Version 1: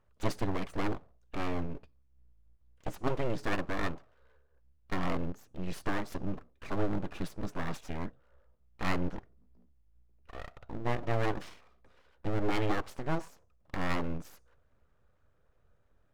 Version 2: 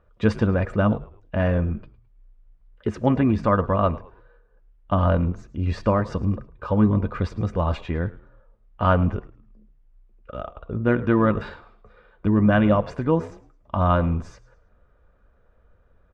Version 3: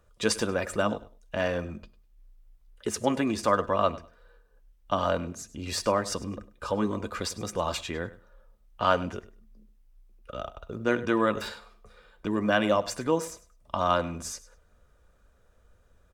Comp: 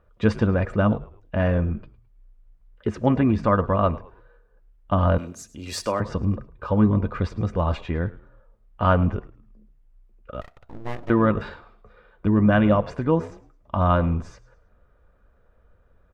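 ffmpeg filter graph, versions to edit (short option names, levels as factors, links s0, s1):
-filter_complex "[1:a]asplit=3[s0][s1][s2];[s0]atrim=end=5.182[s3];[2:a]atrim=start=5.178:end=6.002[s4];[s1]atrim=start=5.998:end=10.412[s5];[0:a]atrim=start=10.408:end=11.102[s6];[s2]atrim=start=11.098[s7];[s3][s4]acrossfade=d=0.004:c1=hsin:c2=hsin[s8];[s8][s5]acrossfade=d=0.004:c1=hsin:c2=hsin[s9];[s9][s6]acrossfade=d=0.004:c1=hsin:c2=hsin[s10];[s10][s7]acrossfade=d=0.004:c1=hsin:c2=hsin"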